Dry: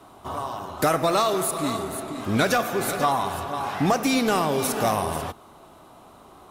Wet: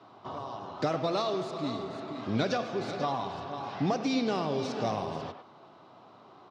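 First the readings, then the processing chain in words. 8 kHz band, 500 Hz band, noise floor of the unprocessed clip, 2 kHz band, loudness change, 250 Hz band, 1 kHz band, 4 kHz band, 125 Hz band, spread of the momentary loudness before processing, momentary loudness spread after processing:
−20.0 dB, −7.0 dB, −50 dBFS, −12.0 dB, −8.0 dB, −6.0 dB, −9.5 dB, −8.0 dB, −6.0 dB, 10 LU, 11 LU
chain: far-end echo of a speakerphone 100 ms, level −10 dB
dynamic equaliser 1,500 Hz, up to −8 dB, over −37 dBFS, Q 0.73
elliptic band-pass filter 110–5,000 Hz, stop band 40 dB
level −5 dB

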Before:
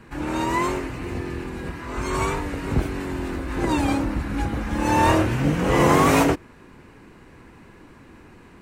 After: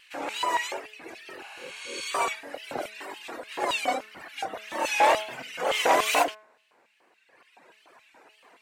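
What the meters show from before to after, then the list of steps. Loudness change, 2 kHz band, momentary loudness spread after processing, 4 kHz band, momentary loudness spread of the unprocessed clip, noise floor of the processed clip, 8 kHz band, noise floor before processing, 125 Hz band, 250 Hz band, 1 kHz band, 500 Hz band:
−4.5 dB, −2.0 dB, 19 LU, +2.5 dB, 13 LU, −64 dBFS, −1.5 dB, −48 dBFS, below −30 dB, −19.5 dB, −2.5 dB, −5.5 dB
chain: reverb reduction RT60 1.9 s
auto-filter high-pass square 3.5 Hz 650–2,800 Hz
tape wow and flutter 110 cents
parametric band 1,100 Hz −2.5 dB
healed spectral selection 0:01.46–0:02.03, 570–11,000 Hz both
hum removal 214.2 Hz, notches 10
saturating transformer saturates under 1,500 Hz

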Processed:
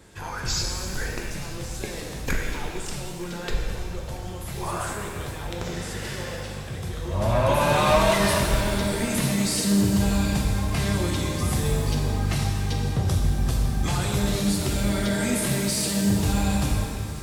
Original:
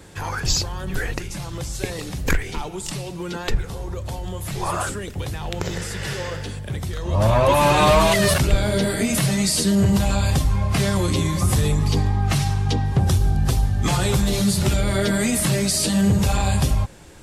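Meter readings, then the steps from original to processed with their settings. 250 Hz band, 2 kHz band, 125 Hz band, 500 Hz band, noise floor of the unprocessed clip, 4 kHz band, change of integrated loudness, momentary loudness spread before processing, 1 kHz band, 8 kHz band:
−3.0 dB, −3.0 dB, −5.0 dB, −4.0 dB, −32 dBFS, −4.0 dB, −4.0 dB, 13 LU, −4.0 dB, −4.0 dB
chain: feedback echo with a high-pass in the loop 465 ms, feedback 84%, level −19.5 dB
reverb with rising layers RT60 1.9 s, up +7 semitones, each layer −8 dB, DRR 0.5 dB
level −7 dB

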